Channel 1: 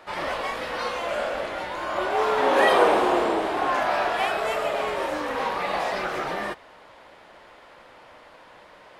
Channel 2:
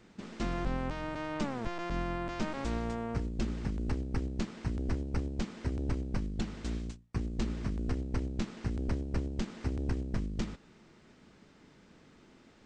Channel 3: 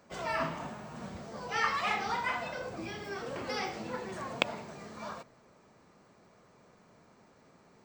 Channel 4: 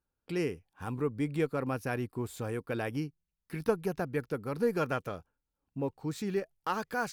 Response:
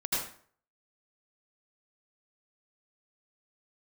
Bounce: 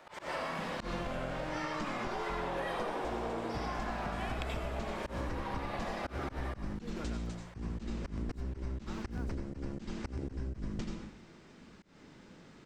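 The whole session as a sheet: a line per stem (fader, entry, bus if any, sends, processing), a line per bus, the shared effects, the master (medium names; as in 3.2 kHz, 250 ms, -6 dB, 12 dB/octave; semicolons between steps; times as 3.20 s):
-11.5 dB, 0.00 s, send -5 dB, none
-0.5 dB, 0.40 s, send -8 dB, none
-8.5 dB, 0.00 s, send -3 dB, Chebyshev low-pass 12 kHz, order 2; treble shelf 9 kHz +11 dB
-14.5 dB, 2.20 s, no send, none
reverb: on, RT60 0.50 s, pre-delay 72 ms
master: slow attack 172 ms; compression 6:1, threshold -34 dBFS, peak gain reduction 14 dB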